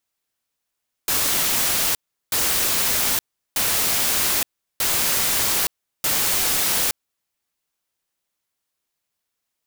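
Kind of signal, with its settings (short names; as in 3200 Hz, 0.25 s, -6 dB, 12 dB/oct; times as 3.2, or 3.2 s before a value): noise bursts white, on 0.87 s, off 0.37 s, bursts 5, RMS -20.5 dBFS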